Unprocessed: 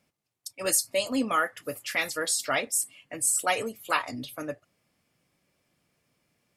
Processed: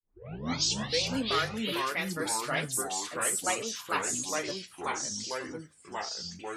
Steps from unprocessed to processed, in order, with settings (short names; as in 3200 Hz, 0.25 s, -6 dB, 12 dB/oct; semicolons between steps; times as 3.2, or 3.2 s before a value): tape start at the beginning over 1.13 s; echoes that change speed 0.203 s, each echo -3 st, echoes 3; gain -5.5 dB